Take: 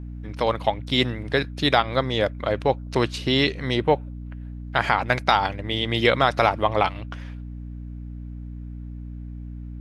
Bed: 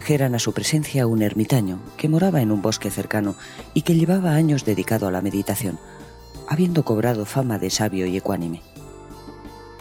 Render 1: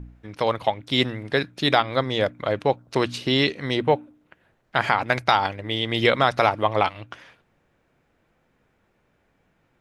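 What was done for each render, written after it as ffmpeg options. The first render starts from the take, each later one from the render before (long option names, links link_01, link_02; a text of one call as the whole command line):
ffmpeg -i in.wav -af "bandreject=frequency=60:width_type=h:width=4,bandreject=frequency=120:width_type=h:width=4,bandreject=frequency=180:width_type=h:width=4,bandreject=frequency=240:width_type=h:width=4,bandreject=frequency=300:width_type=h:width=4" out.wav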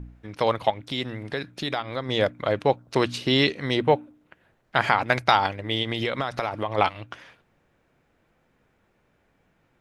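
ffmpeg -i in.wav -filter_complex "[0:a]asettb=1/sr,asplit=3[link_01][link_02][link_03];[link_01]atrim=end=0.704[link_04];[link_02]atrim=start=0.7:end=2.09,asetpts=PTS-STARTPTS,afade=type=in:duration=0.004:curve=qsin,afade=type=out:start_time=1.386:duration=0.004:curve=qsin,acompressor=threshold=-30dB:ratio=2:attack=3.2:release=140:knee=1:detection=peak[link_05];[link_03]atrim=start=2.086[link_06];[link_04][link_05]acrossfade=duration=0.004:curve1=hsin:curve2=qsin[link_07];[link_07][link_06]acrossfade=duration=0.004:curve1=qsin:curve2=hsin,asplit=3[link_08][link_09][link_10];[link_08]afade=type=out:start_time=5.82:duration=0.02[link_11];[link_09]acompressor=threshold=-22dB:ratio=6:attack=3.2:release=140:knee=1:detection=peak,afade=type=in:start_time=5.82:duration=0.02,afade=type=out:start_time=6.77:duration=0.02[link_12];[link_10]afade=type=in:start_time=6.77:duration=0.02[link_13];[link_11][link_12][link_13]amix=inputs=3:normalize=0" out.wav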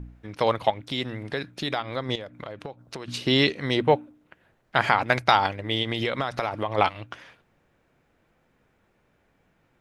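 ffmpeg -i in.wav -filter_complex "[0:a]asettb=1/sr,asplit=3[link_01][link_02][link_03];[link_01]atrim=end=2.154[link_04];[link_02]atrim=start=2.15:end=3.08,asetpts=PTS-STARTPTS,afade=type=in:duration=0.004:curve=qsin,afade=type=out:start_time=0.926:duration=0.004:curve=qsin,acompressor=threshold=-32dB:ratio=16:attack=3.2:release=140:knee=1:detection=peak[link_05];[link_03]atrim=start=3.076[link_06];[link_04][link_05]acrossfade=duration=0.004:curve1=hsin:curve2=qsin[link_07];[link_07][link_06]acrossfade=duration=0.004:curve1=qsin:curve2=hsin" out.wav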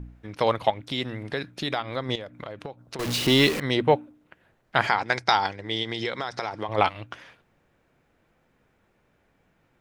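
ffmpeg -i in.wav -filter_complex "[0:a]asettb=1/sr,asplit=3[link_01][link_02][link_03];[link_01]atrim=end=2.994[link_04];[link_02]atrim=start=2.99:end=3.6,asetpts=PTS-STARTPTS,afade=type=in:duration=0.004:curve=qsin,afade=type=out:start_time=0.606:duration=0.004:curve=qsin,aeval=exprs='val(0)+0.5*0.0562*sgn(val(0))':channel_layout=same[link_05];[link_03]atrim=start=3.596[link_06];[link_04][link_05]acrossfade=duration=0.004:curve1=hsin:curve2=qsin[link_07];[link_07][link_06]acrossfade=duration=0.004:curve1=qsin:curve2=hsin,asettb=1/sr,asplit=3[link_08][link_09][link_10];[link_08]atrim=end=4.874[link_11];[link_09]atrim=start=4.87:end=6.69,asetpts=PTS-STARTPTS,afade=type=in:duration=0.004:curve=qsin,afade=type=out:start_time=1.816:duration=0.004:curve=qsin,highpass=120,equalizer=frequency=140:width_type=q:width=4:gain=-8,equalizer=frequency=260:width_type=q:width=4:gain=-8,equalizer=frequency=600:width_type=q:width=4:gain=-7,equalizer=frequency=1200:width_type=q:width=4:gain=-5,equalizer=frequency=2700:width_type=q:width=4:gain=-7,equalizer=frequency=5300:width_type=q:width=4:gain=8,lowpass=frequency=8700:width=0.5412,lowpass=frequency=8700:width=1.3066[link_12];[link_10]atrim=start=6.686[link_13];[link_11][link_12]acrossfade=duration=0.004:curve1=hsin:curve2=qsin[link_14];[link_14][link_13]acrossfade=duration=0.004:curve1=qsin:curve2=hsin" out.wav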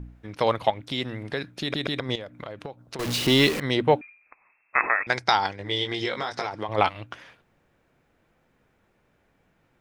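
ffmpeg -i in.wav -filter_complex "[0:a]asettb=1/sr,asplit=3[link_01][link_02][link_03];[link_01]atrim=end=4.014[link_04];[link_02]atrim=start=4.01:end=5.07,asetpts=PTS-STARTPTS,afade=type=in:duration=0.004:curve=qsin,afade=type=out:start_time=1.056:duration=0.004:curve=qsin,lowpass=frequency=2300:width_type=q:width=0.5098,lowpass=frequency=2300:width_type=q:width=0.6013,lowpass=frequency=2300:width_type=q:width=0.9,lowpass=frequency=2300:width_type=q:width=2.563,afreqshift=-2700[link_05];[link_03]atrim=start=5.066[link_06];[link_04][link_05]acrossfade=duration=0.004:curve1=hsin:curve2=qsin[link_07];[link_07][link_06]acrossfade=duration=0.004:curve1=qsin:curve2=hsin,asettb=1/sr,asplit=3[link_08][link_09][link_10];[link_08]atrim=end=5.584[link_11];[link_09]atrim=start=5.58:end=6.47,asetpts=PTS-STARTPTS,afade=type=in:duration=0.004:curve=qsin,afade=type=out:start_time=0.886:duration=0.004:curve=qsin,asplit=2[link_12][link_13];[link_13]adelay=20,volume=-4dB[link_14];[link_12][link_14]amix=inputs=2:normalize=0,atrim=end_sample=39249[link_15];[link_10]atrim=start=6.466[link_16];[link_11][link_15]acrossfade=duration=0.004:curve1=hsin:curve2=qsin[link_17];[link_17][link_16]acrossfade=duration=0.004:curve1=qsin:curve2=hsin,asplit=4[link_18][link_19][link_20][link_21];[link_18]atrim=end=1.742[link_22];[link_19]atrim=start=1.608:end=1.742[link_23];[link_20]atrim=start=1.608:end=1.742[link_24];[link_21]atrim=start=1.998[link_25];[link_22][link_23]acrossfade=duration=0.004:curve1=hsin:curve2=hsin[link_26];[link_26][link_24]acrossfade=duration=0.004:curve1=hsin:curve2=hsin[link_27];[link_27][link_25]acrossfade=duration=0.004:curve1=hsin:curve2=hsin" out.wav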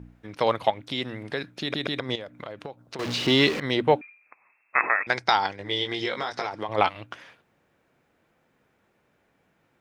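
ffmpeg -i in.wav -filter_complex "[0:a]acrossover=split=6200[link_01][link_02];[link_02]acompressor=threshold=-53dB:ratio=4:attack=1:release=60[link_03];[link_01][link_03]amix=inputs=2:normalize=0,highpass=frequency=140:poles=1" out.wav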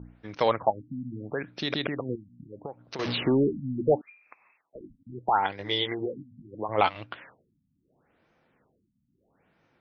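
ffmpeg -i in.wav -af "asoftclip=type=tanh:threshold=-8.5dB,afftfilt=real='re*lt(b*sr/1024,260*pow(6700/260,0.5+0.5*sin(2*PI*0.75*pts/sr)))':imag='im*lt(b*sr/1024,260*pow(6700/260,0.5+0.5*sin(2*PI*0.75*pts/sr)))':win_size=1024:overlap=0.75" out.wav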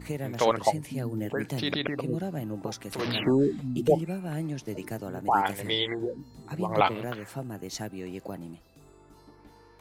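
ffmpeg -i in.wav -i bed.wav -filter_complex "[1:a]volume=-15dB[link_01];[0:a][link_01]amix=inputs=2:normalize=0" out.wav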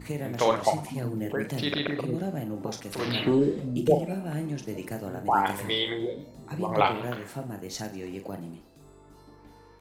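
ffmpeg -i in.wav -filter_complex "[0:a]asplit=2[link_01][link_02];[link_02]adelay=41,volume=-8dB[link_03];[link_01][link_03]amix=inputs=2:normalize=0,asplit=5[link_04][link_05][link_06][link_07][link_08];[link_05]adelay=97,afreqshift=57,volume=-17dB[link_09];[link_06]adelay=194,afreqshift=114,volume=-23.4dB[link_10];[link_07]adelay=291,afreqshift=171,volume=-29.8dB[link_11];[link_08]adelay=388,afreqshift=228,volume=-36.1dB[link_12];[link_04][link_09][link_10][link_11][link_12]amix=inputs=5:normalize=0" out.wav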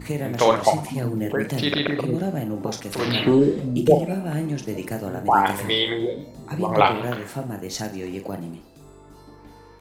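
ffmpeg -i in.wav -af "volume=6dB" out.wav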